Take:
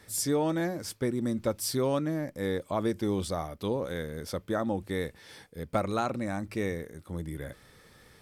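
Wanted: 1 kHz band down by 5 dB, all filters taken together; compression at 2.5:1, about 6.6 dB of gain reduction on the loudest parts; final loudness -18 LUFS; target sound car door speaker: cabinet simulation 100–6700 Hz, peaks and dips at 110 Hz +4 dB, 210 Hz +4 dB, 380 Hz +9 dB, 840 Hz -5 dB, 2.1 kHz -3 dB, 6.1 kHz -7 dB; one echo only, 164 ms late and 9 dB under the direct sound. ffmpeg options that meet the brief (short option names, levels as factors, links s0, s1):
-af "equalizer=f=1000:t=o:g=-4.5,acompressor=threshold=0.02:ratio=2.5,highpass=100,equalizer=f=110:t=q:w=4:g=4,equalizer=f=210:t=q:w=4:g=4,equalizer=f=380:t=q:w=4:g=9,equalizer=f=840:t=q:w=4:g=-5,equalizer=f=2100:t=q:w=4:g=-3,equalizer=f=6100:t=q:w=4:g=-7,lowpass=f=6700:w=0.5412,lowpass=f=6700:w=1.3066,aecho=1:1:164:0.355,volume=6.31"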